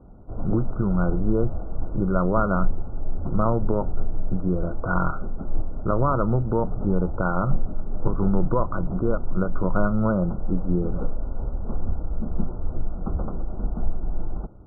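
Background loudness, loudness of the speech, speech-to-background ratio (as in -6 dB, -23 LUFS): -34.0 LUFS, -26.0 LUFS, 8.0 dB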